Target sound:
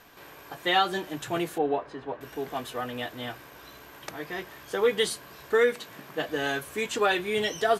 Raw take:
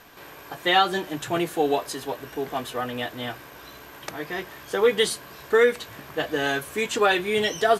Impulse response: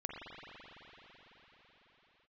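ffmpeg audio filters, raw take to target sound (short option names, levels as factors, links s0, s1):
-filter_complex "[0:a]asettb=1/sr,asplit=3[s0][s1][s2];[s0]atrim=end=1.584[s3];[s1]atrim=start=1.58:end=2.21,asetpts=PTS-STARTPTS,afade=t=in:d=0.004:c=qsin,afade=t=out:st=0.626:d=0.004:c=qsin,lowpass=1800[s4];[s2]atrim=start=2.206[s5];[s3][s4]acrossfade=d=0.004:c1=hsin:c2=qsin[s6];[s6][s5]acrossfade=d=0.004:c1=qsin:c2=hsin,asettb=1/sr,asplit=3[s7][s8][s9];[s7]atrim=end=5.734[s10];[s8]atrim=start=5.73:end=6.29,asetpts=PTS-STARTPTS,afade=t=in:d=0.004:c=qsin,afade=t=out:st=0.556:d=0.004:c=qsin,lowshelf=f=120:t=q:w=1.5:g=-10.5[s11];[s9]atrim=start=6.286[s12];[s10][s11]acrossfade=d=0.004:c1=hsin:c2=qsin[s13];[s13][s12]acrossfade=d=0.004:c1=qsin:c2=hsin,volume=0.631"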